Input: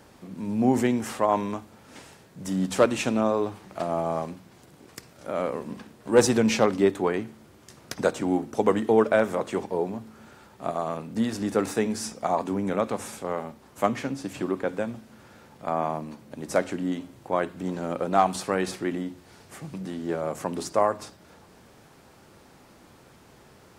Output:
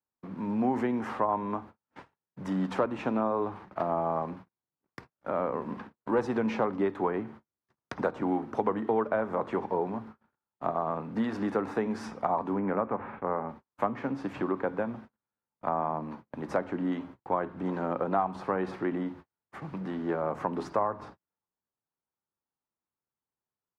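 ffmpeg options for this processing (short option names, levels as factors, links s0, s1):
-filter_complex "[0:a]asettb=1/sr,asplit=3[s0][s1][s2];[s0]atrim=end=12.594[s3];[s1]atrim=start=12.59:end=13.49,asetpts=PTS-STARTPTS,afade=t=in:d=0.004:c=qsin,afade=t=out:st=0.896:d=0.004:c=qsin,lowpass=f=2400:w=0.5412,lowpass=f=2400:w=1.3066[s4];[s2]atrim=start=13.486[s5];[s3][s4]acrossfade=d=0.004:c1=hsin:c2=qsin[s6];[s6][s5]acrossfade=d=0.004:c1=qsin:c2=hsin,agate=range=0.00501:threshold=0.00631:ratio=16:detection=peak,firequalizer=gain_entry='entry(630,0);entry(940,7);entry(2800,-5);entry(7700,-22)':delay=0.05:min_phase=1,acrossover=split=170|1100[s7][s8][s9];[s7]acompressor=threshold=0.00501:ratio=4[s10];[s8]acompressor=threshold=0.0501:ratio=4[s11];[s9]acompressor=threshold=0.00891:ratio=4[s12];[s10][s11][s12]amix=inputs=3:normalize=0"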